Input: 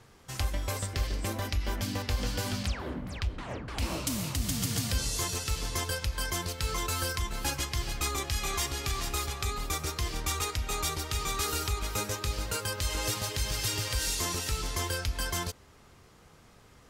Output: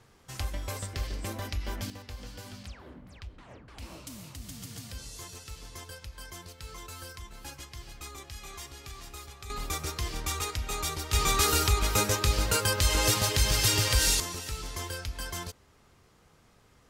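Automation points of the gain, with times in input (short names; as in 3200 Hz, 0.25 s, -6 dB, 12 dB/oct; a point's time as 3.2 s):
-3 dB
from 1.9 s -12 dB
from 9.5 s -1 dB
from 11.13 s +6.5 dB
from 14.2 s -4.5 dB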